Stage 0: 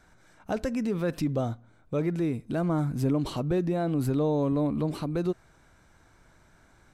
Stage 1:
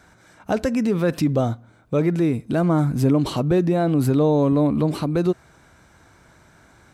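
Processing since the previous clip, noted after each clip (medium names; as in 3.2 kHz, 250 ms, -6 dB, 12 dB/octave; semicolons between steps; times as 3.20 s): high-pass 59 Hz; trim +8 dB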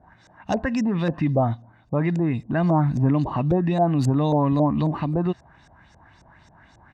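comb 1.1 ms, depth 58%; LFO low-pass saw up 3.7 Hz 510–6800 Hz; trim -3 dB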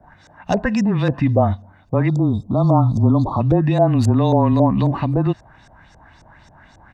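spectral selection erased 2.08–3.41 s, 1.4–3.2 kHz; frequency shift -20 Hz; trim +5 dB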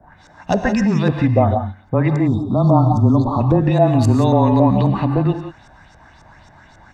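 gated-style reverb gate 200 ms rising, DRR 5.5 dB; trim +1 dB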